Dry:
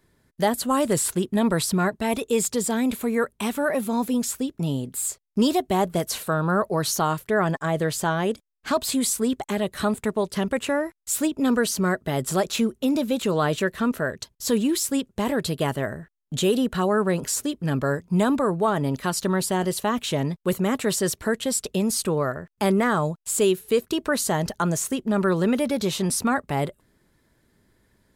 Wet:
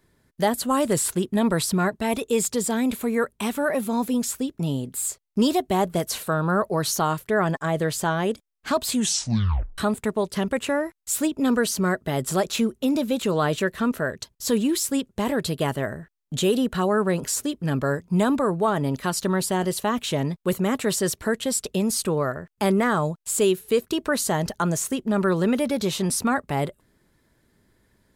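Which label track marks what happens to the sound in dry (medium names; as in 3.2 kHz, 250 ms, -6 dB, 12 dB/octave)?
8.910000	8.910000	tape stop 0.87 s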